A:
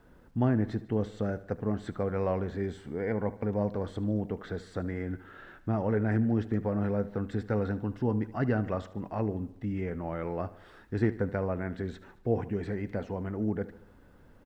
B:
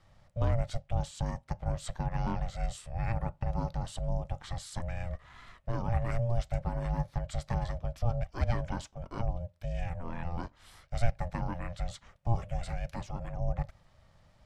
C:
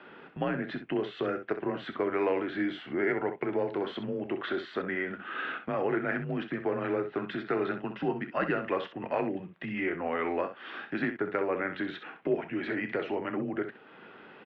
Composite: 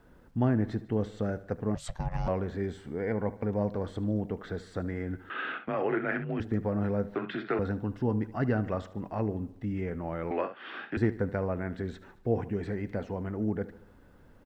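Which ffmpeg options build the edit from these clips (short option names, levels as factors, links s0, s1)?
-filter_complex "[2:a]asplit=3[s0][s1][s2];[0:a]asplit=5[s3][s4][s5][s6][s7];[s3]atrim=end=1.752[s8];[1:a]atrim=start=1.748:end=2.282[s9];[s4]atrim=start=2.278:end=5.302[s10];[s0]atrim=start=5.298:end=6.402[s11];[s5]atrim=start=6.398:end=7.152[s12];[s1]atrim=start=7.148:end=7.592[s13];[s6]atrim=start=7.588:end=10.312[s14];[s2]atrim=start=10.308:end=10.972[s15];[s7]atrim=start=10.968[s16];[s8][s9]acrossfade=d=0.004:c1=hsin:c2=hsin[s17];[s17][s10]acrossfade=d=0.004:c1=hsin:c2=hsin[s18];[s18][s11]acrossfade=d=0.004:c1=hsin:c2=hsin[s19];[s19][s12]acrossfade=d=0.004:c1=hsin:c2=hsin[s20];[s20][s13]acrossfade=d=0.004:c1=hsin:c2=hsin[s21];[s21][s14]acrossfade=d=0.004:c1=hsin:c2=hsin[s22];[s22][s15]acrossfade=d=0.004:c1=hsin:c2=hsin[s23];[s23][s16]acrossfade=d=0.004:c1=hsin:c2=hsin"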